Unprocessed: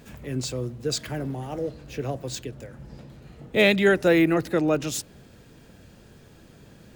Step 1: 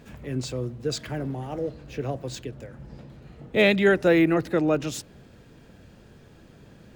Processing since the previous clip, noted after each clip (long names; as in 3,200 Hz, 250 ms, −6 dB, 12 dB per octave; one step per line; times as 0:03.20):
high-shelf EQ 5,500 Hz −8.5 dB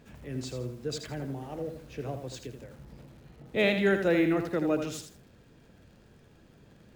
feedback echo at a low word length 81 ms, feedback 35%, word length 8 bits, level −7 dB
level −6.5 dB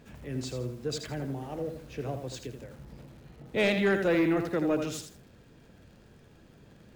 soft clipping −19.5 dBFS, distortion −17 dB
level +1.5 dB